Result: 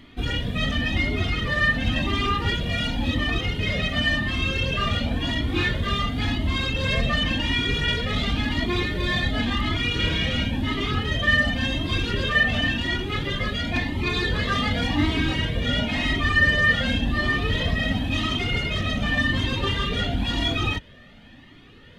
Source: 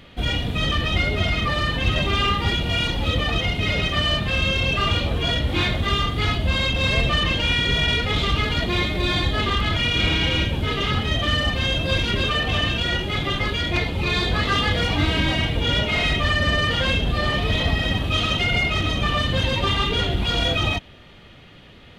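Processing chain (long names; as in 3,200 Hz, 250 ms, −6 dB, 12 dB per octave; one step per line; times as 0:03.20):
parametric band 63 Hz −5.5 dB 0.29 octaves
hollow resonant body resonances 250/1,800 Hz, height 11 dB, ringing for 40 ms
flanger whose copies keep moving one way rising 0.93 Hz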